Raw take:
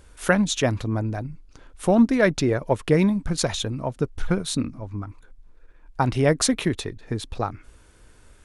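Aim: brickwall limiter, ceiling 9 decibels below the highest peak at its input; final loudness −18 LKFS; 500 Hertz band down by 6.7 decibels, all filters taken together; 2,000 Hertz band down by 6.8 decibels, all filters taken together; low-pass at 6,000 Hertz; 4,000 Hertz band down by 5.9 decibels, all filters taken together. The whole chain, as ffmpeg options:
ffmpeg -i in.wav -af "lowpass=6000,equalizer=frequency=500:width_type=o:gain=-8,equalizer=frequency=2000:width_type=o:gain=-7.5,equalizer=frequency=4000:width_type=o:gain=-4,volume=12.5dB,alimiter=limit=-6.5dB:level=0:latency=1" out.wav

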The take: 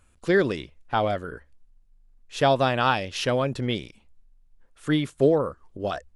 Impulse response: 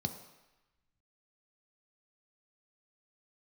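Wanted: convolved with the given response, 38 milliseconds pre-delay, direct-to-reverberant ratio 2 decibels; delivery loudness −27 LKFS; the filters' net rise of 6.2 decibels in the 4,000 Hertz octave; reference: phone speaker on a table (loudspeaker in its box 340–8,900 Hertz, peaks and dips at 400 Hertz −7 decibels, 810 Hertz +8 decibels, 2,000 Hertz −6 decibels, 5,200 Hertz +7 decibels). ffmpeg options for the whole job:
-filter_complex "[0:a]equalizer=frequency=4000:width_type=o:gain=7,asplit=2[link_01][link_02];[1:a]atrim=start_sample=2205,adelay=38[link_03];[link_02][link_03]afir=irnorm=-1:irlink=0,volume=-3.5dB[link_04];[link_01][link_04]amix=inputs=2:normalize=0,highpass=frequency=340:width=0.5412,highpass=frequency=340:width=1.3066,equalizer=frequency=400:width_type=q:width=4:gain=-7,equalizer=frequency=810:width_type=q:width=4:gain=8,equalizer=frequency=2000:width_type=q:width=4:gain=-6,equalizer=frequency=5200:width_type=q:width=4:gain=7,lowpass=frequency=8900:width=0.5412,lowpass=frequency=8900:width=1.3066,volume=-6.5dB"

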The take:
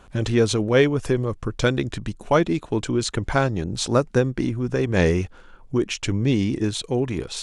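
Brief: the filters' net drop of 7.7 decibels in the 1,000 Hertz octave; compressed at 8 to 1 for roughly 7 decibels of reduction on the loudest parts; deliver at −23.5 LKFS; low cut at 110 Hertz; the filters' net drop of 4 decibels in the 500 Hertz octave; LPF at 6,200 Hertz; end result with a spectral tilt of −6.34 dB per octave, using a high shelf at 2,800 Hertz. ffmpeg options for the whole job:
ffmpeg -i in.wav -af "highpass=110,lowpass=6200,equalizer=frequency=500:width_type=o:gain=-3,equalizer=frequency=1000:width_type=o:gain=-8.5,highshelf=frequency=2800:gain=-8,acompressor=threshold=-23dB:ratio=8,volume=6.5dB" out.wav

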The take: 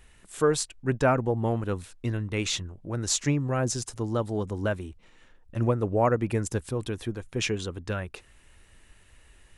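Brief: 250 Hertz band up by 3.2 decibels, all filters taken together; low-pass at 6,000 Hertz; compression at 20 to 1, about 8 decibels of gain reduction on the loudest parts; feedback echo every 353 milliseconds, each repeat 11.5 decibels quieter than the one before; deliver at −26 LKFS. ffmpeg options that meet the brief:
ffmpeg -i in.wav -af "lowpass=6000,equalizer=frequency=250:width_type=o:gain=4,acompressor=threshold=-24dB:ratio=20,aecho=1:1:353|706|1059:0.266|0.0718|0.0194,volume=5dB" out.wav

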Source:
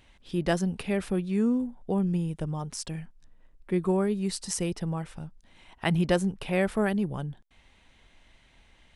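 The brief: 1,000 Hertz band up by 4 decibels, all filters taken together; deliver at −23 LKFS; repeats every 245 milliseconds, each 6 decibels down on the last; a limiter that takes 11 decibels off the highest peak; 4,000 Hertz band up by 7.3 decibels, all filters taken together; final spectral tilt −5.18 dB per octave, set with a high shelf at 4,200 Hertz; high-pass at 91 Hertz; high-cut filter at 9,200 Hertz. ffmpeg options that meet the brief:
ffmpeg -i in.wav -af "highpass=91,lowpass=9200,equalizer=frequency=1000:width_type=o:gain=5,equalizer=frequency=4000:width_type=o:gain=7,highshelf=frequency=4200:gain=5,alimiter=limit=-18.5dB:level=0:latency=1,aecho=1:1:245|490|735|980|1225|1470:0.501|0.251|0.125|0.0626|0.0313|0.0157,volume=6dB" out.wav

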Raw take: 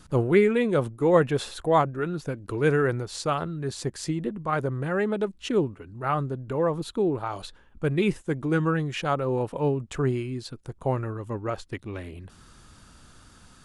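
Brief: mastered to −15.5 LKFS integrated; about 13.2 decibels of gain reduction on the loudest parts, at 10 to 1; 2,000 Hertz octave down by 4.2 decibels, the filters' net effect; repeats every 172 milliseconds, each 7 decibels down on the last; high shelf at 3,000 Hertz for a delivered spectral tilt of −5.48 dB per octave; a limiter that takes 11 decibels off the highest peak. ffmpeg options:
ffmpeg -i in.wav -af "equalizer=frequency=2000:width_type=o:gain=-8,highshelf=frequency=3000:gain=6,acompressor=threshold=-28dB:ratio=10,alimiter=level_in=3dB:limit=-24dB:level=0:latency=1,volume=-3dB,aecho=1:1:172|344|516|688|860:0.447|0.201|0.0905|0.0407|0.0183,volume=19.5dB" out.wav

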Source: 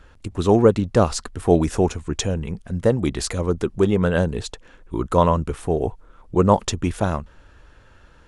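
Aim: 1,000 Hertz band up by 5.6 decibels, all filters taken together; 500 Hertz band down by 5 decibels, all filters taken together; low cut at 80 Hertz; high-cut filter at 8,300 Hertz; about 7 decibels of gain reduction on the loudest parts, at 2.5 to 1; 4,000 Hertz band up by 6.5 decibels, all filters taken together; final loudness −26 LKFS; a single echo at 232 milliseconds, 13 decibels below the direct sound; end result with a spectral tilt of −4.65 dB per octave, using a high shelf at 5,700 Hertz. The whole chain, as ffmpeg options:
ffmpeg -i in.wav -af "highpass=80,lowpass=8300,equalizer=frequency=500:width_type=o:gain=-8.5,equalizer=frequency=1000:width_type=o:gain=8.5,equalizer=frequency=4000:width_type=o:gain=5.5,highshelf=frequency=5700:gain=6,acompressor=threshold=-19dB:ratio=2.5,aecho=1:1:232:0.224,volume=-1dB" out.wav

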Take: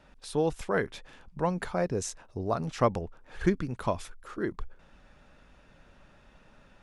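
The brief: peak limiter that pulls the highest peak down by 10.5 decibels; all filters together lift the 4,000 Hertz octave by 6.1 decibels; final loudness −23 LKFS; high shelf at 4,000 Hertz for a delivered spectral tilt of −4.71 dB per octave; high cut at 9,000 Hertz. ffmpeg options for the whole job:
ffmpeg -i in.wav -af "lowpass=9000,highshelf=frequency=4000:gain=3,equalizer=frequency=4000:width_type=o:gain=6,volume=12dB,alimiter=limit=-9.5dB:level=0:latency=1" out.wav

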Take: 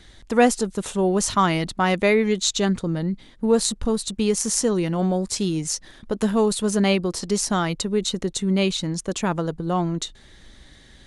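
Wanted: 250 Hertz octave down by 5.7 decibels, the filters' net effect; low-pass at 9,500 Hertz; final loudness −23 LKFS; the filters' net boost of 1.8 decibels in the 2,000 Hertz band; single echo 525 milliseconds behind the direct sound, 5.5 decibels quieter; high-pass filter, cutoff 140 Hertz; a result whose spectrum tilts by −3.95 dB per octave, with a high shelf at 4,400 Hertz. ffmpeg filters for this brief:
ffmpeg -i in.wav -af "highpass=140,lowpass=9500,equalizer=frequency=250:width_type=o:gain=-7,equalizer=frequency=2000:width_type=o:gain=3.5,highshelf=frequency=4400:gain=-6,aecho=1:1:525:0.531,volume=1dB" out.wav

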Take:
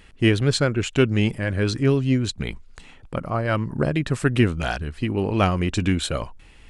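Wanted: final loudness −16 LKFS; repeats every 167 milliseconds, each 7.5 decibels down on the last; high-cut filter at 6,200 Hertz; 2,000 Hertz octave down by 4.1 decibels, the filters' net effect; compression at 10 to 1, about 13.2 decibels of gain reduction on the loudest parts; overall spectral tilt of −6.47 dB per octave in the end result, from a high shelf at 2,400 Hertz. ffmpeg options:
ffmpeg -i in.wav -af "lowpass=6200,equalizer=frequency=2000:width_type=o:gain=-3,highshelf=frequency=2400:gain=-5,acompressor=threshold=-27dB:ratio=10,aecho=1:1:167|334|501|668|835:0.422|0.177|0.0744|0.0312|0.0131,volume=16dB" out.wav

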